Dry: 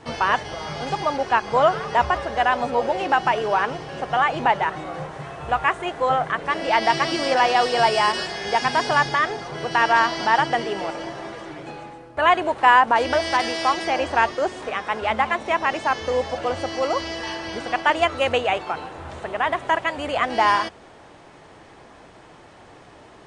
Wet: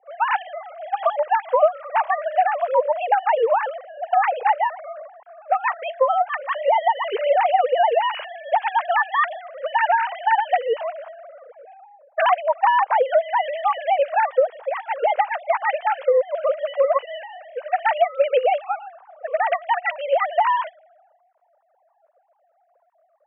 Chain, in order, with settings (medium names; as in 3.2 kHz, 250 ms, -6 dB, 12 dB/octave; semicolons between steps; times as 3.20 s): formants replaced by sine waves; resonant low shelf 330 Hz -10 dB, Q 3; compression 6:1, threshold -18 dBFS, peak gain reduction 15.5 dB; level-controlled noise filter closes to 850 Hz, open at -18 dBFS; three bands expanded up and down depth 40%; trim +3 dB